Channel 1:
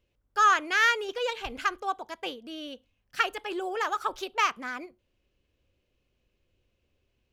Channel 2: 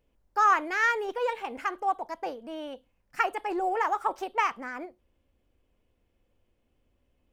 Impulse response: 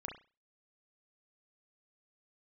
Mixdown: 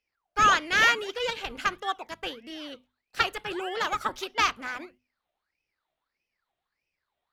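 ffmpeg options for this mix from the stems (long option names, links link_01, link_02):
-filter_complex "[0:a]agate=range=-23dB:threshold=-53dB:ratio=16:detection=peak,adynamicequalizer=threshold=0.02:dfrequency=1500:dqfactor=0.7:tfrequency=1500:tqfactor=0.7:attack=5:release=100:ratio=0.375:range=2:mode=boostabove:tftype=highshelf,volume=-1dB[link_01];[1:a]equalizer=frequency=2800:width=0.68:gain=12.5,aeval=exprs='val(0)*sin(2*PI*1600*n/s+1600*0.6/1.6*sin(2*PI*1.6*n/s))':channel_layout=same,volume=-12dB[link_02];[link_01][link_02]amix=inputs=2:normalize=0,bandreject=frequency=50:width_type=h:width=6,bandreject=frequency=100:width_type=h:width=6,bandreject=frequency=150:width_type=h:width=6,bandreject=frequency=200:width_type=h:width=6,bandreject=frequency=250:width_type=h:width=6"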